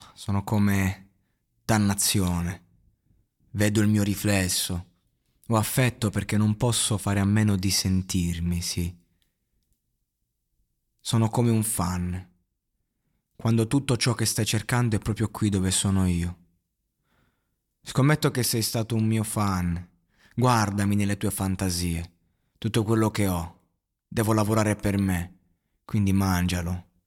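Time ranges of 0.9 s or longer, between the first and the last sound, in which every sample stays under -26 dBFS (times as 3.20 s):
2.53–3.55 s
8.88–11.07 s
12.18–13.45 s
16.30–17.89 s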